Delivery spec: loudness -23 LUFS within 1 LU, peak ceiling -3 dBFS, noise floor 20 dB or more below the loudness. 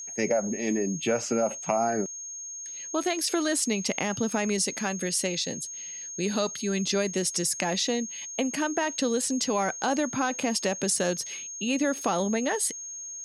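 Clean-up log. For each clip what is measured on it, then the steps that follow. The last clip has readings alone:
tick rate 20 per s; steady tone 6.5 kHz; tone level -36 dBFS; loudness -27.5 LUFS; peak level -10.5 dBFS; loudness target -23.0 LUFS
-> de-click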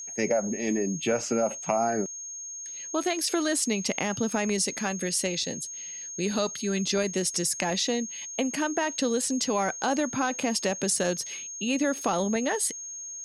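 tick rate 0 per s; steady tone 6.5 kHz; tone level -36 dBFS
-> band-stop 6.5 kHz, Q 30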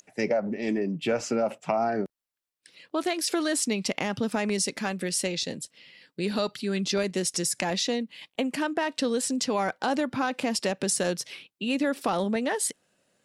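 steady tone not found; loudness -28.0 LUFS; peak level -10.5 dBFS; loudness target -23.0 LUFS
-> trim +5 dB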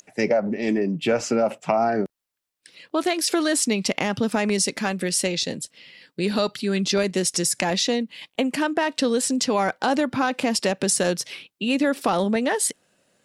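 loudness -23.0 LUFS; peak level -5.5 dBFS; noise floor -79 dBFS

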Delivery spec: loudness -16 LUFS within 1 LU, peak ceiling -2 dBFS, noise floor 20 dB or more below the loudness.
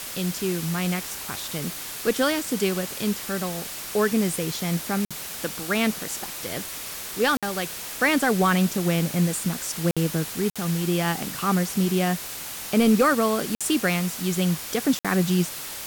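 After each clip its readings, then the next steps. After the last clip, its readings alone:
dropouts 6; longest dropout 56 ms; noise floor -35 dBFS; noise floor target -45 dBFS; loudness -24.5 LUFS; peak level -9.0 dBFS; loudness target -16.0 LUFS
-> interpolate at 5.05/7.37/9.91/10.50/13.55/14.99 s, 56 ms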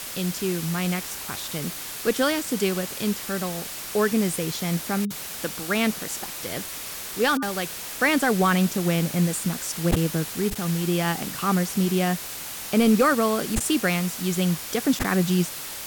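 dropouts 0; noise floor -35 dBFS; noise floor target -45 dBFS
-> noise reduction 10 dB, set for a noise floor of -35 dBFS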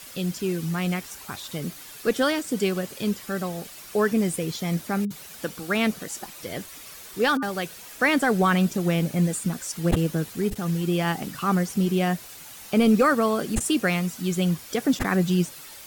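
noise floor -43 dBFS; noise floor target -45 dBFS
-> noise reduction 6 dB, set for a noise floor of -43 dBFS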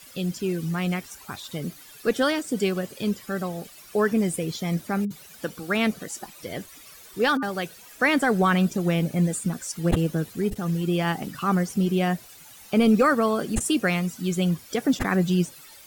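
noise floor -48 dBFS; loudness -25.0 LUFS; peak level -7.0 dBFS; loudness target -16.0 LUFS
-> trim +9 dB; peak limiter -2 dBFS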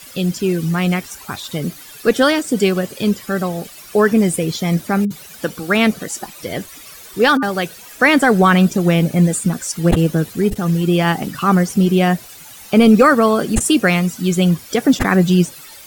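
loudness -16.0 LUFS; peak level -2.0 dBFS; noise floor -39 dBFS

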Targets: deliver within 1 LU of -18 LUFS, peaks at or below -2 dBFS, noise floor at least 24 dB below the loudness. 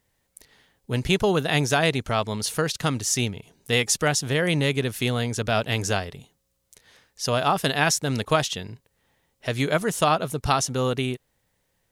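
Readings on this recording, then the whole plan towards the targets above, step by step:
loudness -24.0 LUFS; peak level -5.0 dBFS; loudness target -18.0 LUFS
-> trim +6 dB; peak limiter -2 dBFS

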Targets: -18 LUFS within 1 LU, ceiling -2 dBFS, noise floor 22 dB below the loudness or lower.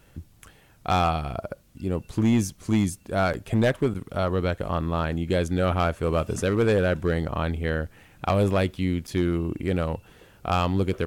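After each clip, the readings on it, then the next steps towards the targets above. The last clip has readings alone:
clipped samples 1.2%; clipping level -15.0 dBFS; dropouts 3; longest dropout 7.5 ms; loudness -25.5 LUFS; peak level -15.0 dBFS; loudness target -18.0 LUFS
-> clip repair -15 dBFS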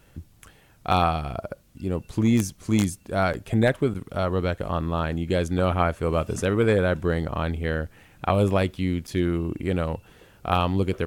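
clipped samples 0.0%; dropouts 3; longest dropout 7.5 ms
-> interpolate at 3.33/3.94/9.07 s, 7.5 ms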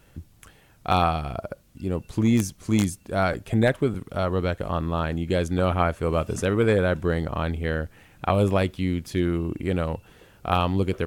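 dropouts 0; loudness -25.0 LUFS; peak level -6.0 dBFS; loudness target -18.0 LUFS
-> trim +7 dB; peak limiter -2 dBFS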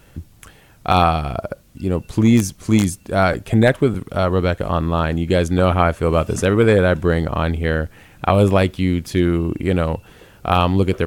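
loudness -18.0 LUFS; peak level -2.0 dBFS; noise floor -49 dBFS

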